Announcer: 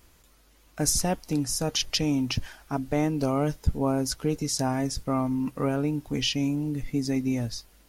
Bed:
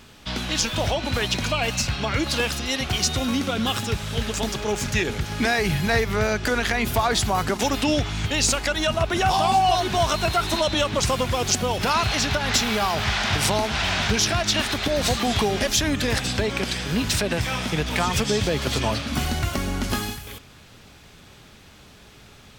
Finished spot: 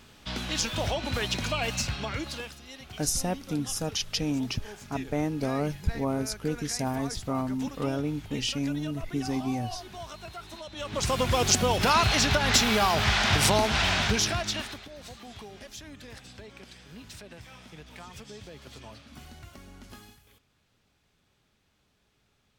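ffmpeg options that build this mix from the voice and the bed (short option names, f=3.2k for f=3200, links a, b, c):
-filter_complex "[0:a]adelay=2200,volume=-3.5dB[a];[1:a]volume=14dB,afade=t=out:st=1.84:d=0.71:silence=0.188365,afade=t=in:st=10.75:d=0.61:silence=0.105925,afade=t=out:st=13.76:d=1.11:silence=0.0794328[b];[a][b]amix=inputs=2:normalize=0"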